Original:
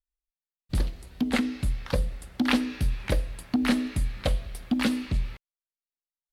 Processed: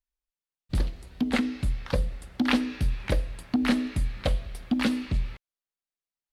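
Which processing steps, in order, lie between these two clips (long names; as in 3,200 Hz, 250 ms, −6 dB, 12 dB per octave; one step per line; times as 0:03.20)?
high-shelf EQ 9,400 Hz −8 dB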